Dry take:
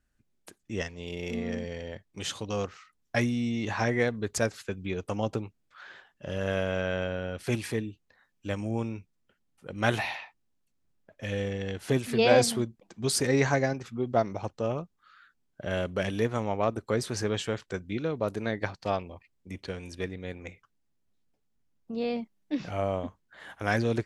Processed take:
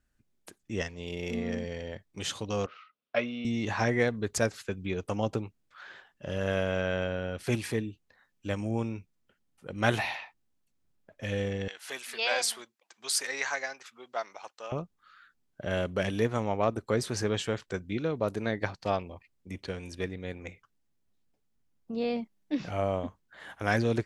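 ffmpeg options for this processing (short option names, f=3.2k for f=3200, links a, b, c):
-filter_complex "[0:a]asettb=1/sr,asplit=3[a][b][c];[a]atrim=end=2.664[d];[b]atrim=start=2.66:end=3.45,asetpts=PTS-STARTPTS,afade=t=in:d=0.004:c=qsin,afade=t=out:st=0.786:d=0.004:c=qsin,highpass=330,equalizer=f=340:t=q:w=4:g=-8,equalizer=f=580:t=q:w=4:g=5,equalizer=f=840:t=q:w=4:g=-8,equalizer=f=1.3k:t=q:w=4:g=4,equalizer=f=1.8k:t=q:w=4:g=-8,equalizer=f=2.7k:t=q:w=4:g=3,lowpass=f=3.7k:w=0.5412,lowpass=f=3.7k:w=1.3066[e];[c]atrim=start=3.446[f];[d][e]acrossfade=d=0.004:c1=hsin:c2=qsin[g];[g][f]acrossfade=d=0.004:c1=qsin:c2=hsin,asettb=1/sr,asplit=3[h][i][j];[h]atrim=end=11.684[k];[i]atrim=start=11.68:end=14.72,asetpts=PTS-STARTPTS,afade=t=in:d=0.004:c=qsin,afade=t=out:st=3.036:d=0.004:c=qsin,highpass=1.1k[l];[j]atrim=start=14.716[m];[k][l]acrossfade=d=0.004:c1=hsin:c2=qsin[n];[n][m]acrossfade=d=0.004:c1=qsin:c2=hsin"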